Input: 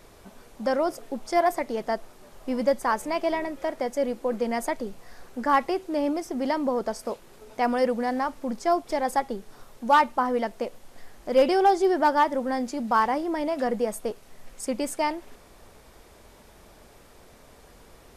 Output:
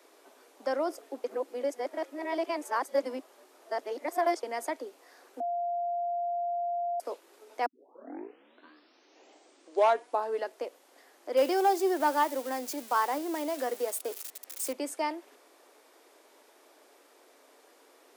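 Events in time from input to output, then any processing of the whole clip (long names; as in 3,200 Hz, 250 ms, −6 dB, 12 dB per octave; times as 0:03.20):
0:01.24–0:04.43: reverse
0:05.40–0:07.00: beep over 696 Hz −23 dBFS
0:07.66: tape start 2.97 s
0:11.37–0:14.73: spike at every zero crossing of −25 dBFS
whole clip: Butterworth high-pass 270 Hz 72 dB per octave; level −5.5 dB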